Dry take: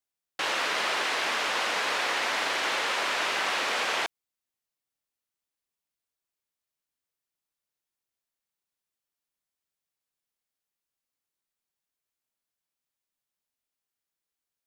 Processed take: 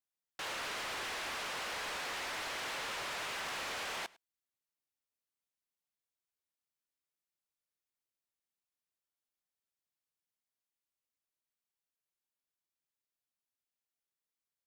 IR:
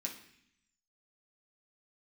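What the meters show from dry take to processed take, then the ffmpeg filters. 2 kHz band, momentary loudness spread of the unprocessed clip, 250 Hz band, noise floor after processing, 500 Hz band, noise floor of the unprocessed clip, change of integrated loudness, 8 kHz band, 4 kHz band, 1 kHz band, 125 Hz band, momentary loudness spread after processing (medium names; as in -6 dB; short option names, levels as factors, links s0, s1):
-12.0 dB, 3 LU, -10.5 dB, under -85 dBFS, -12.0 dB, under -85 dBFS, -11.5 dB, -8.5 dB, -11.5 dB, -12.0 dB, no reading, 3 LU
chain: -af "volume=35.5,asoftclip=hard,volume=0.0282,aecho=1:1:103:0.0668,volume=0.447"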